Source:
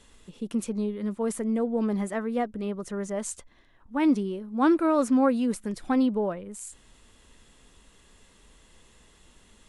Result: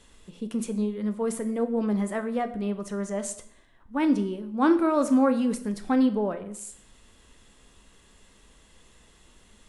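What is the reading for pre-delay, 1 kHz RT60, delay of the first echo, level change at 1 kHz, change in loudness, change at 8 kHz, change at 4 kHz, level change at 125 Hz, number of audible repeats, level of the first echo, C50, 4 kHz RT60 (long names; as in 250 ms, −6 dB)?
10 ms, 0.70 s, no echo audible, +0.5 dB, +0.5 dB, +0.5 dB, +0.5 dB, can't be measured, no echo audible, no echo audible, 13.0 dB, 0.55 s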